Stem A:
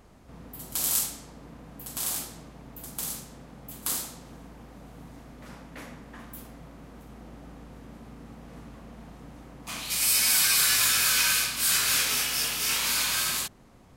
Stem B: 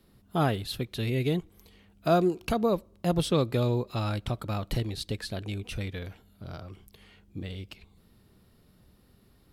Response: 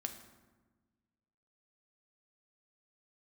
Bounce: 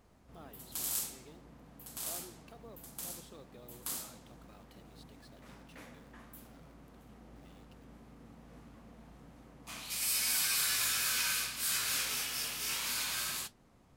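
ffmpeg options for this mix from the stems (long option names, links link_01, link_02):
-filter_complex "[0:a]flanger=delay=7.6:depth=9.8:regen=72:speed=1.7:shape=triangular,volume=-5dB[link_01];[1:a]acrusher=bits=8:dc=4:mix=0:aa=0.000001,acompressor=threshold=-52dB:ratio=1.5,highpass=290,volume=-16dB[link_02];[link_01][link_02]amix=inputs=2:normalize=0"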